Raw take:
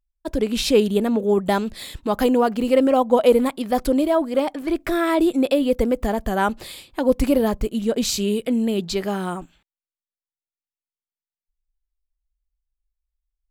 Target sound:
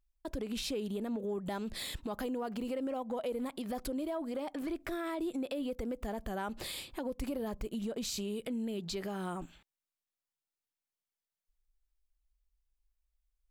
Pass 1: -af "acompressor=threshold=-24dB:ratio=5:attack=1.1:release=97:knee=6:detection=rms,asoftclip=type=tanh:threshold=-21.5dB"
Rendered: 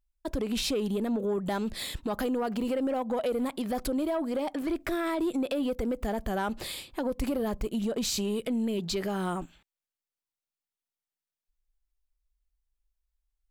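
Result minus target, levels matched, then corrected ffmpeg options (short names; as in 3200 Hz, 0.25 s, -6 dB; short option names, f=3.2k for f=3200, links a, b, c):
compressor: peak gain reduction -8.5 dB
-af "acompressor=threshold=-34.5dB:ratio=5:attack=1.1:release=97:knee=6:detection=rms,asoftclip=type=tanh:threshold=-21.5dB"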